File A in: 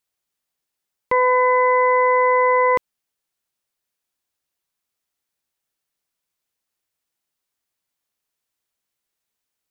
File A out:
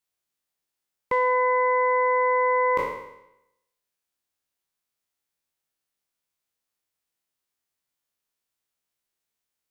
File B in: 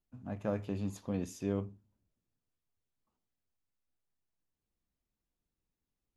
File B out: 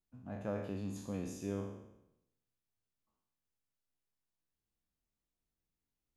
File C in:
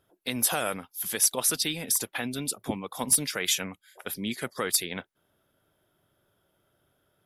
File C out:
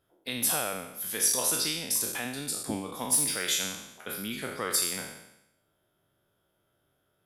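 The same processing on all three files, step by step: spectral sustain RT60 0.85 s; trim -5.5 dB

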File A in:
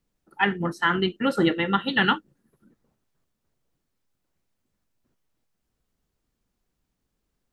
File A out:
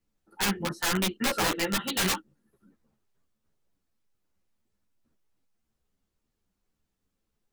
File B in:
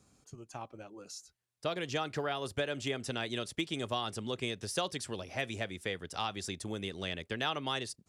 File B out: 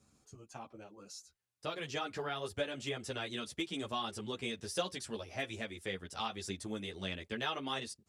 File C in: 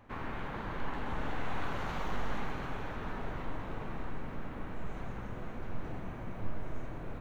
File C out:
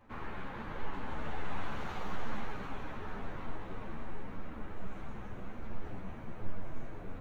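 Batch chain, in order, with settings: integer overflow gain 17 dB; three-phase chorus

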